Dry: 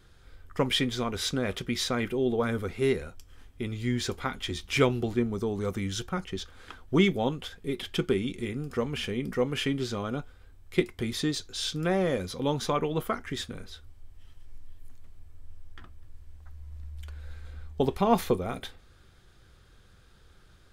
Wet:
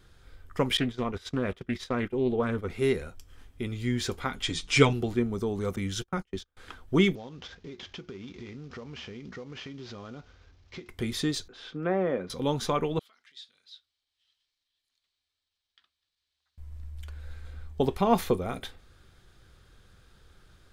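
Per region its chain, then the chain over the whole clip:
0.77–2.70 s: treble shelf 4.3 kHz -11 dB + gate -35 dBFS, range -16 dB + loudspeaker Doppler distortion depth 0.18 ms
4.42–4.93 s: low-pass 8.3 kHz 24 dB/octave + treble shelf 6 kHz +9 dB + comb 6.8 ms, depth 81%
5.76–6.57 s: gate -36 dBFS, range -31 dB + tape noise reduction on one side only decoder only
7.15–10.89 s: CVSD coder 32 kbps + high-pass 44 Hz + compression, threshold -39 dBFS
11.48–12.30 s: low-pass 3.3 kHz + three-band isolator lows -19 dB, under 160 Hz, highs -12 dB, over 2.1 kHz
12.99–16.58 s: compression 5:1, threshold -38 dBFS + band-pass filter 4 kHz, Q 3.3
whole clip: none

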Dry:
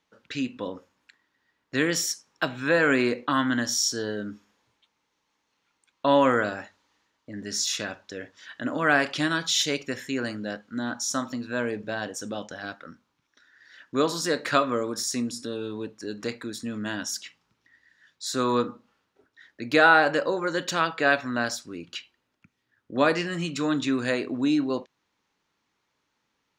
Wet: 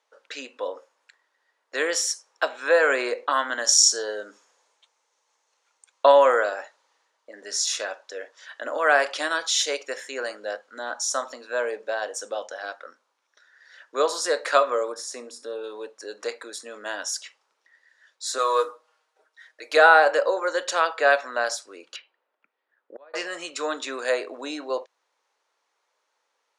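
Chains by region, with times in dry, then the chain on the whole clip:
3.64–6.12 s: peaking EQ 7 kHz +7 dB 0.82 oct + transient shaper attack +5 dB, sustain +1 dB
14.92–15.64 s: treble shelf 2.3 kHz -9.5 dB + flutter echo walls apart 11.4 m, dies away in 0.2 s
18.38–19.77 s: bass shelf 370 Hz -11.5 dB + comb 6.4 ms, depth 70% + modulation noise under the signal 30 dB
21.96–23.14 s: distance through air 310 m + inverted gate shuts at -25 dBFS, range -32 dB
whole clip: elliptic band-pass 510–9900 Hz, stop band 60 dB; peaking EQ 2.8 kHz -7.5 dB 2 oct; trim +6.5 dB

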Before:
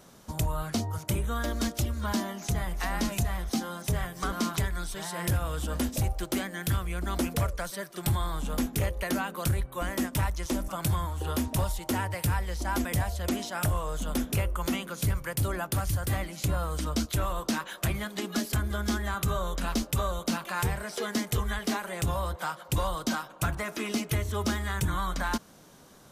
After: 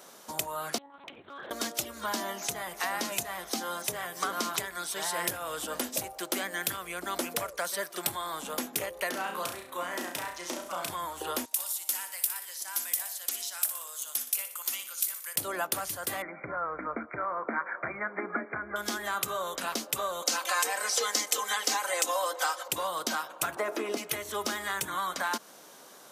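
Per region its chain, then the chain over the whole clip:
0.78–1.51 s: monotone LPC vocoder at 8 kHz 280 Hz + compression 16:1, threshold -39 dBFS + hard clipper -36 dBFS
9.09–10.90 s: treble shelf 8.8 kHz -8.5 dB + compression 2.5:1, threshold -36 dBFS + flutter echo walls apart 5.8 m, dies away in 0.46 s
11.45–15.36 s: differentiator + feedback delay 60 ms, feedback 55%, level -11 dB
16.22–18.76 s: brick-wall FIR low-pass 2.4 kHz + peaking EQ 1.4 kHz +6.5 dB 0.31 oct
20.22–22.68 s: high-pass 310 Hz 24 dB/octave + peaking EQ 6.3 kHz +9 dB 0.99 oct + comb 3.9 ms, depth 78%
23.56–23.97 s: high-pass 260 Hz 24 dB/octave + tilt shelf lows +9 dB, about 1.2 kHz + tape noise reduction on one side only encoder only
whole clip: compression, threshold -29 dBFS; high-pass 420 Hz 12 dB/octave; treble shelf 9.9 kHz +3.5 dB; trim +4.5 dB

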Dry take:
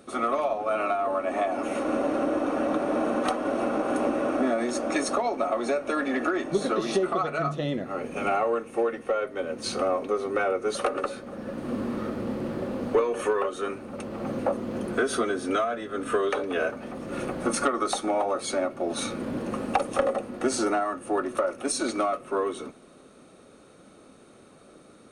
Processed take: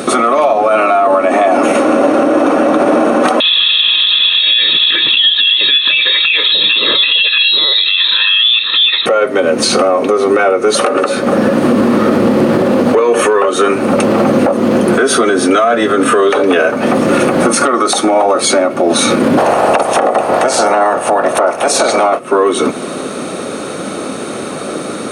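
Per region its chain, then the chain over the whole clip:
3.40–9.06 s: comb 1.4 ms, depth 89% + compression 2.5:1, threshold -32 dBFS + frequency inversion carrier 4 kHz
19.37–22.18 s: spectral peaks clipped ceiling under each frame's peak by 17 dB + peaking EQ 670 Hz +14 dB 1.3 oct
whole clip: Bessel high-pass 170 Hz, order 2; compression 4:1, threshold -39 dBFS; loudness maximiser +33 dB; trim -1 dB

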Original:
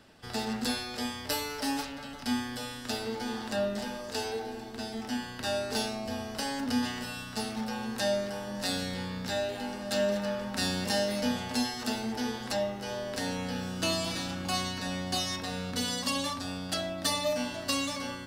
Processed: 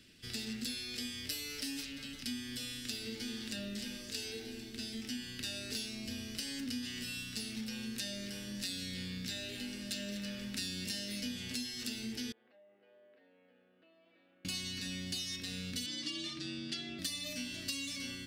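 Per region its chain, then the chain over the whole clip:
12.32–14.45 s: compression 10:1, threshold -33 dBFS + ladder band-pass 740 Hz, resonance 45% + distance through air 370 m
15.86–16.99 s: low-pass 5 kHz + frequency shift +51 Hz
whole clip: FFT filter 340 Hz 0 dB, 850 Hz -22 dB, 2.3 kHz +5 dB; compression 4:1, threshold -34 dBFS; trim -3.5 dB

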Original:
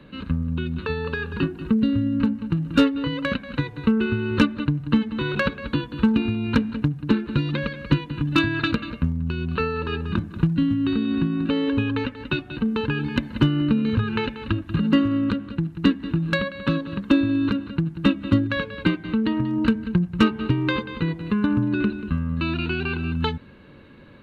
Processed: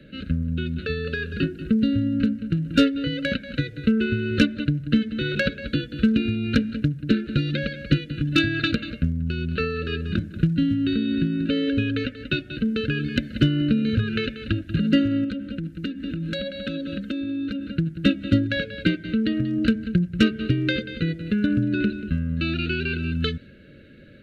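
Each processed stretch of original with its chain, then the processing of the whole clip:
15.24–17.72 s: comb 3.9 ms, depth 61% + compression 12:1, threshold -24 dBFS
whole clip: dynamic bell 4.8 kHz, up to +4 dB, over -46 dBFS, Q 0.84; elliptic band-stop 620–1400 Hz, stop band 60 dB

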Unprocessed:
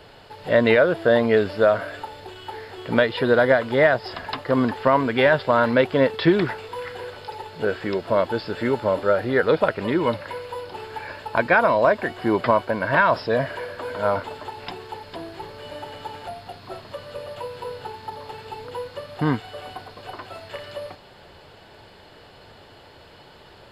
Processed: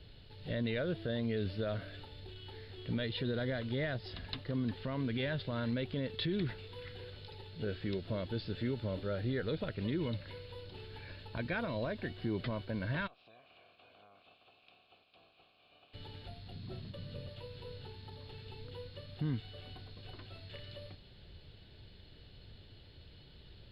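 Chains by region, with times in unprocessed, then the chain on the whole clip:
13.06–15.93 s: spectral peaks clipped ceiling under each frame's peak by 19 dB + compression, threshold -27 dBFS + vowel filter a
16.51–17.29 s: gate with hold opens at -31 dBFS, closes at -39 dBFS + peaking EQ 180 Hz +10 dB 1.3 oct
whole clip: amplifier tone stack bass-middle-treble 10-0-1; peak limiter -36 dBFS; resonant high shelf 5.2 kHz -10 dB, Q 3; trim +9 dB

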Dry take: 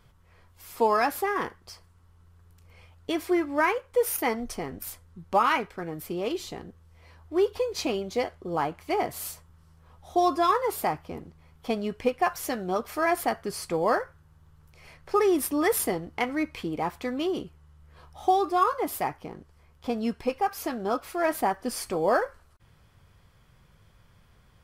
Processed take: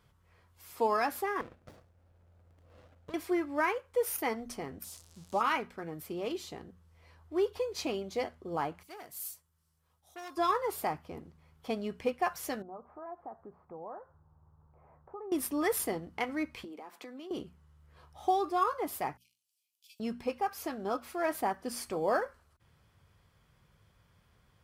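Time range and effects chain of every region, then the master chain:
1.41–3.14 s: high-order bell 650 Hz +14.5 dB 1 oct + compression 16:1, threshold -34 dBFS + sliding maximum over 33 samples
4.84–5.41 s: zero-crossing glitches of -26.5 dBFS + low-pass 6.4 kHz + peaking EQ 2 kHz -11.5 dB 1.6 oct
8.83–10.37 s: pre-emphasis filter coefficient 0.8 + transformer saturation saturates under 2.2 kHz
12.62–15.32 s: peaking EQ 820 Hz +6.5 dB 0.81 oct + compression 2:1, threshold -48 dBFS + low-pass 1.2 kHz 24 dB/octave
16.64–17.31 s: steep high-pass 210 Hz 48 dB/octave + compression 16:1, threshold -36 dBFS
19.17–20.00 s: steep high-pass 2.4 kHz 96 dB/octave + differentiator
whole clip: high-pass 44 Hz; hum notches 60/120/180/240 Hz; trim -6 dB

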